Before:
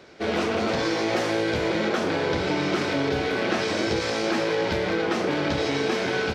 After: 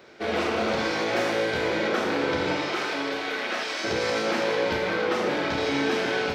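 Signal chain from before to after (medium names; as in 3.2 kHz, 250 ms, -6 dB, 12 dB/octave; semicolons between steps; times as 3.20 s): tilt EQ +2 dB/octave; 2.55–3.83 s: high-pass 350 Hz -> 1.4 kHz 6 dB/octave; peaking EQ 7.9 kHz -9.5 dB 2.5 oct; Schroeder reverb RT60 0.94 s, combs from 25 ms, DRR 3 dB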